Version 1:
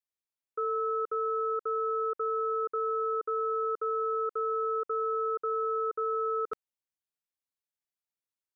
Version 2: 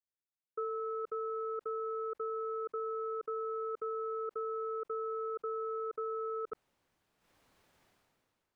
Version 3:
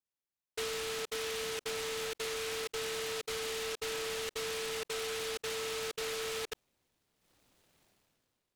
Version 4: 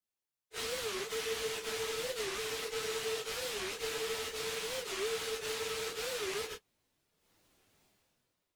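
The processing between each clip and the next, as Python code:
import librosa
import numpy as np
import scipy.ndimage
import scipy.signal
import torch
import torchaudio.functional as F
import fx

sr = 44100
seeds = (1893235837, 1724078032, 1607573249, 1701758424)

y1 = fx.transient(x, sr, attack_db=3, sustain_db=-9)
y1 = fx.lowpass(y1, sr, hz=1000.0, slope=6)
y1 = fx.sustainer(y1, sr, db_per_s=24.0)
y1 = y1 * librosa.db_to_amplitude(-5.0)
y2 = fx.noise_mod_delay(y1, sr, seeds[0], noise_hz=2600.0, depth_ms=0.21)
y3 = fx.phase_scramble(y2, sr, seeds[1], window_ms=100)
y3 = fx.record_warp(y3, sr, rpm=45.0, depth_cents=250.0)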